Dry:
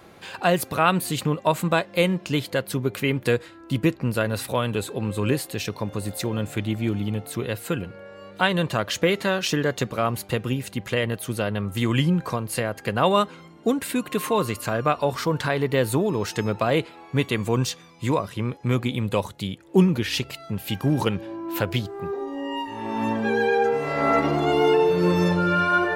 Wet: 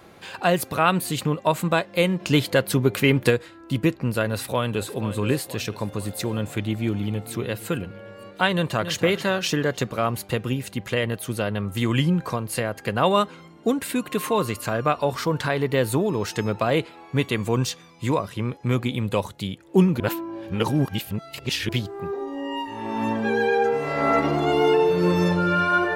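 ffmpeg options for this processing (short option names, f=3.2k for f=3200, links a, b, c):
-filter_complex "[0:a]asplit=3[a][b][c];[a]afade=t=out:st=2.19:d=0.02[d];[b]acontrast=30,afade=t=in:st=2.19:d=0.02,afade=t=out:st=3.29:d=0.02[e];[c]afade=t=in:st=3.29:d=0.02[f];[d][e][f]amix=inputs=3:normalize=0,asplit=2[g][h];[h]afade=t=in:st=4.3:d=0.01,afade=t=out:st=4.91:d=0.01,aecho=0:1:480|960|1440|1920|2400|2880:0.223872|0.12313|0.0677213|0.0372467|0.0204857|0.0112671[i];[g][i]amix=inputs=2:normalize=0,asplit=2[j][k];[k]afade=t=in:st=6.56:d=0.01,afade=t=out:st=7.31:d=0.01,aecho=0:1:460|920|1380|1840|2300:0.133352|0.0733437|0.040339|0.0221865|0.0122026[l];[j][l]amix=inputs=2:normalize=0,asplit=2[m][n];[n]afade=t=in:st=8.53:d=0.01,afade=t=out:st=8.93:d=0.01,aecho=0:1:280|560|840|1120:0.316228|0.126491|0.0505964|0.0202386[o];[m][o]amix=inputs=2:normalize=0,asplit=3[p][q][r];[p]atrim=end=20.002[s];[q]atrim=start=19.998:end=21.692,asetpts=PTS-STARTPTS,areverse[t];[r]atrim=start=21.688[u];[s][t]acrossfade=d=0.004:c1=hsin:c2=hsin[v];[v][u]acrossfade=d=0.004:c1=hsin:c2=hsin"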